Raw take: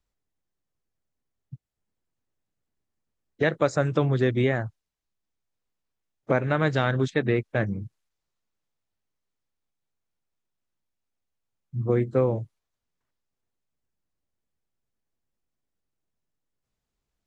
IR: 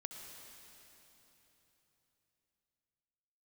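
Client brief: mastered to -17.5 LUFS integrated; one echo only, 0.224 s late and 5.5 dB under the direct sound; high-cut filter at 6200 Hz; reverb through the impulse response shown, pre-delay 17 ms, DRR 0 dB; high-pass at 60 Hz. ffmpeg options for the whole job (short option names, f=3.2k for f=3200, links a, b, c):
-filter_complex "[0:a]highpass=60,lowpass=6.2k,aecho=1:1:224:0.531,asplit=2[a][b];[1:a]atrim=start_sample=2205,adelay=17[c];[b][c]afir=irnorm=-1:irlink=0,volume=3dB[d];[a][d]amix=inputs=2:normalize=0,volume=5dB"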